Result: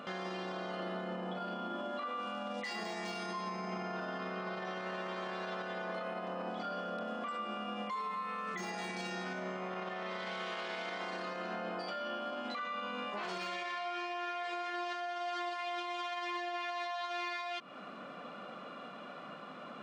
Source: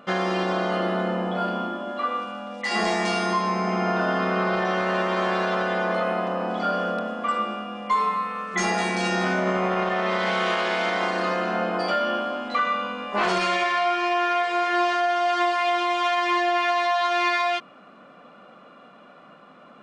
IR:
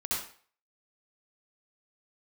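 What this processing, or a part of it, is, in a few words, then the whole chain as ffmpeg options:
broadcast voice chain: -af "highpass=81,deesser=0.75,acompressor=threshold=-33dB:ratio=6,equalizer=f=4.1k:t=o:w=1.5:g=3.5,alimiter=level_in=8.5dB:limit=-24dB:level=0:latency=1:release=79,volume=-8.5dB,volume=1dB"

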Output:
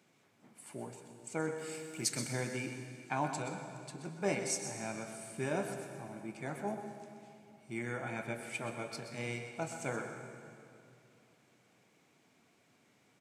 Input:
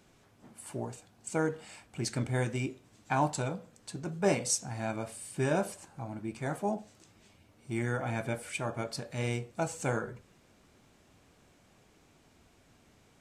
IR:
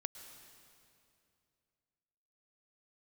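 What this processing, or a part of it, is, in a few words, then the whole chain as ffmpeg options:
PA in a hall: -filter_complex "[0:a]asettb=1/sr,asplit=3[a][b][c];[a]atrim=end=1.584[d];[b]atrim=start=1.58:end=2.33,asetpts=PTS-STARTPTS,afade=t=in:d=0.004:c=qsin,afade=t=out:st=0.746:d=0.004:c=qsin,aemphasis=mode=production:type=75kf[e];[c]atrim=start=2.326[f];[d][e]acrossfade=d=0.004:c1=hsin:c2=qsin[g];[g][f]acrossfade=d=0.004:c1=qsin:c2=hsin,highpass=f=130:w=0.5412,highpass=f=130:w=1.3066,equalizer=f=2.2k:t=o:w=0.36:g=5.5,aecho=1:1:127:0.316[h];[1:a]atrim=start_sample=2205[i];[h][i]afir=irnorm=-1:irlink=0,volume=-3.5dB"

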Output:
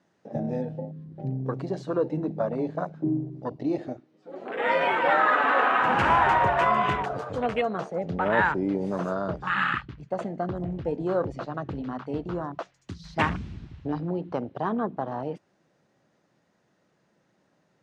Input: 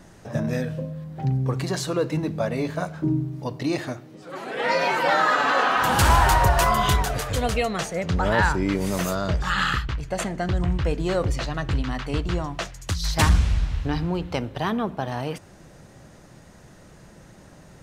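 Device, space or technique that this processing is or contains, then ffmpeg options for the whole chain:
over-cleaned archive recording: -af "highpass=190,lowpass=5.2k,afwtdn=0.0355,volume=-1dB"

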